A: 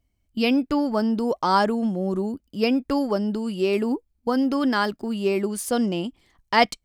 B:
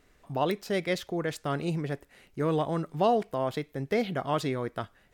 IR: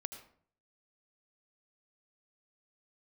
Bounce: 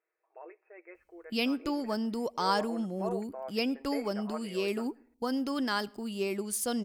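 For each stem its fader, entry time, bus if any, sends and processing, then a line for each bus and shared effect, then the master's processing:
-11.0 dB, 0.95 s, send -15 dB, treble shelf 3.3 kHz +9.5 dB
1.33 s -21 dB -> 1.75 s -13 dB, 0.00 s, send -22.5 dB, FFT band-pass 330–2700 Hz; comb 6.3 ms, depth 59%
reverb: on, RT60 0.55 s, pre-delay 70 ms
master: none

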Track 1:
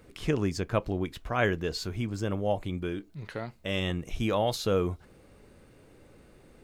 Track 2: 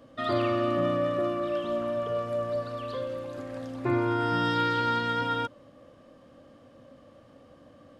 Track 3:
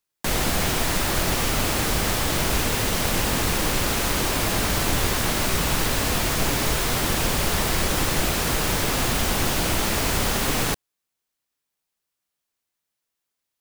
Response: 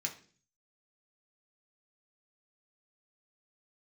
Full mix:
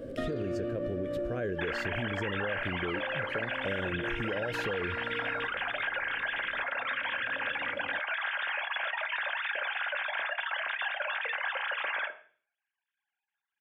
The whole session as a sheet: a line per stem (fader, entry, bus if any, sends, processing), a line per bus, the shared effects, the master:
-5.0 dB, 0.00 s, bus A, no send, none
-1.0 dB, 0.00 s, bus A, send -11 dB, band-stop 6.5 kHz, Q 9.3; compression 1.5:1, threshold -35 dBFS, peak gain reduction 5 dB; auto duck -11 dB, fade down 1.85 s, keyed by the first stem
-12.5 dB, 1.35 s, no bus, send -3 dB, formants replaced by sine waves
bus A: 0.0 dB, resonant low shelf 690 Hz +9.5 dB, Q 3; peak limiter -19.5 dBFS, peak gain reduction 12 dB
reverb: on, RT60 0.45 s, pre-delay 3 ms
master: peaking EQ 1.6 kHz +12 dB 0.27 oct; compression, threshold -30 dBFS, peak gain reduction 10.5 dB

